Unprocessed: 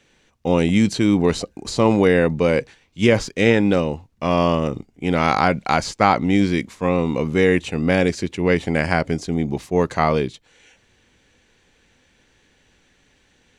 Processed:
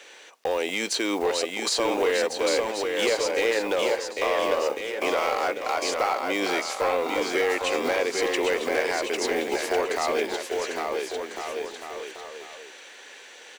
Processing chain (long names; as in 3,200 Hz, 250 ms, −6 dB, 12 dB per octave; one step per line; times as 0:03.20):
one scale factor per block 7 bits
high-pass filter 430 Hz 24 dB per octave
downward compressor 3 to 1, threshold −39 dBFS, peak gain reduction 20.5 dB
in parallel at +2 dB: brickwall limiter −29 dBFS, peak gain reduction 10.5 dB
on the sum: hard clipping −24.5 dBFS, distortion −17 dB
bouncing-ball delay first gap 800 ms, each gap 0.75×, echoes 5
level +6 dB